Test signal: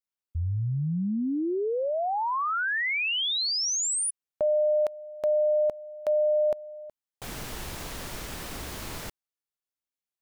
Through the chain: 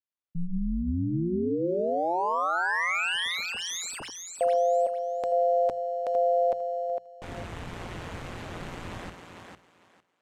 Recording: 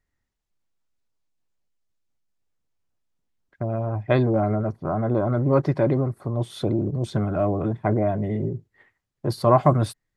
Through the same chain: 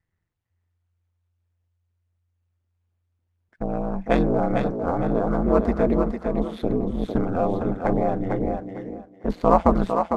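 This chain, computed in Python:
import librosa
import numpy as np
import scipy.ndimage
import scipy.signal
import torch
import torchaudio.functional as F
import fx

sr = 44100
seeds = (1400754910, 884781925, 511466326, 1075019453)

y = scipy.signal.medfilt(x, 9)
y = y * np.sin(2.0 * np.pi * 87.0 * np.arange(len(y)) / sr)
y = scipy.signal.sosfilt(scipy.signal.butter(2, 8600.0, 'lowpass', fs=sr, output='sos'), y)
y = fx.hum_notches(y, sr, base_hz=60, count=3)
y = fx.echo_thinned(y, sr, ms=453, feedback_pct=22, hz=220.0, wet_db=-5.0)
y = F.gain(torch.from_numpy(y), 3.0).numpy()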